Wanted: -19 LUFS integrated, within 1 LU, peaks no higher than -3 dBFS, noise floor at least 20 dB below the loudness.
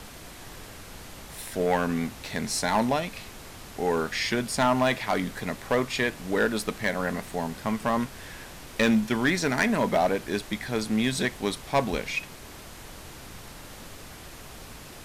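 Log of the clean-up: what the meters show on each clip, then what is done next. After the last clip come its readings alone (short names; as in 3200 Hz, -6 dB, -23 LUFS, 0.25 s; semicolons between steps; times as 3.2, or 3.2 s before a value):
clipped 0.5%; flat tops at -16.0 dBFS; noise floor -44 dBFS; noise floor target -47 dBFS; loudness -27.0 LUFS; peak -16.0 dBFS; loudness target -19.0 LUFS
-> clip repair -16 dBFS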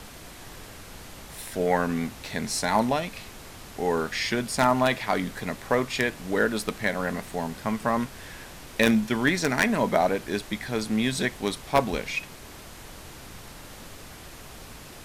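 clipped 0.0%; noise floor -44 dBFS; noise floor target -47 dBFS
-> noise print and reduce 6 dB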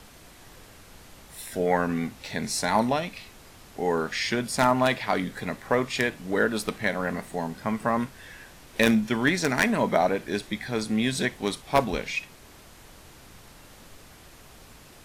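noise floor -50 dBFS; loudness -26.5 LUFS; peak -7.0 dBFS; loudness target -19.0 LUFS
-> gain +7.5 dB; limiter -3 dBFS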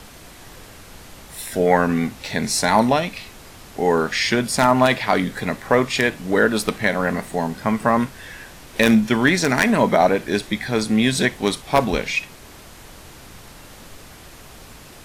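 loudness -19.5 LUFS; peak -3.0 dBFS; noise floor -43 dBFS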